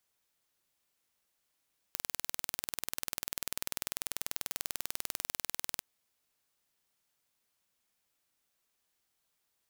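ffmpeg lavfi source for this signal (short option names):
-f lavfi -i "aevalsrc='0.447*eq(mod(n,2172),0)':d=3.85:s=44100"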